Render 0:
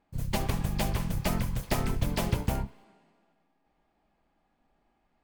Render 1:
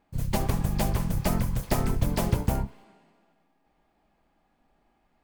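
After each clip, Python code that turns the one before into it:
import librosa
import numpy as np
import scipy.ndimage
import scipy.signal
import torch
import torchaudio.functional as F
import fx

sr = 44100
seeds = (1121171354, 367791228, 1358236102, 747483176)

y = fx.dynamic_eq(x, sr, hz=2900.0, q=0.79, threshold_db=-50.0, ratio=4.0, max_db=-6)
y = y * 10.0 ** (3.5 / 20.0)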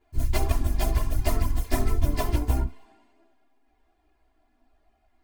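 y = x + 0.96 * np.pad(x, (int(2.9 * sr / 1000.0), 0))[:len(x)]
y = fx.rider(y, sr, range_db=10, speed_s=0.5)
y = fx.chorus_voices(y, sr, voices=4, hz=0.58, base_ms=14, depth_ms=2.3, mix_pct=65)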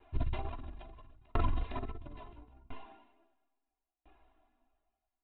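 y = scipy.signal.sosfilt(scipy.signal.cheby1(6, 6, 3900.0, 'lowpass', fs=sr, output='sos'), x)
y = fx.over_compress(y, sr, threshold_db=-31.0, ratio=-1.0)
y = fx.tremolo_decay(y, sr, direction='decaying', hz=0.74, depth_db=38)
y = y * 10.0 ** (7.0 / 20.0)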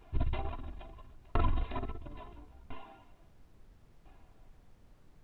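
y = fx.dmg_noise_colour(x, sr, seeds[0], colour='brown', level_db=-58.0)
y = y * 10.0 ** (1.5 / 20.0)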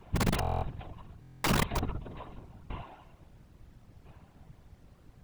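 y = (np.mod(10.0 ** (25.0 / 20.0) * x + 1.0, 2.0) - 1.0) / 10.0 ** (25.0 / 20.0)
y = fx.whisperise(y, sr, seeds[1])
y = fx.buffer_glitch(y, sr, at_s=(0.4, 1.21), block=1024, repeats=9)
y = y * 10.0 ** (4.0 / 20.0)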